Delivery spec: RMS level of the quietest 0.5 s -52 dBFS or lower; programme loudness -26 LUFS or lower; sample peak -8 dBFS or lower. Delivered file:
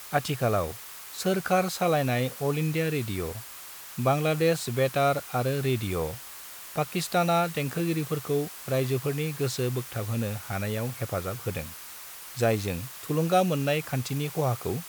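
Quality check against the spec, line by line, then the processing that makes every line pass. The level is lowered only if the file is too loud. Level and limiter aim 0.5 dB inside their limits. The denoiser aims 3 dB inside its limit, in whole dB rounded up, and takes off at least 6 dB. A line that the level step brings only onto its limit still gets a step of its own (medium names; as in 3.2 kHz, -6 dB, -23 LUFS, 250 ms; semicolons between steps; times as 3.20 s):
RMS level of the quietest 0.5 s -43 dBFS: fail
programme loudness -28.0 LUFS: pass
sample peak -10.5 dBFS: pass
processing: noise reduction 12 dB, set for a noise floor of -43 dBFS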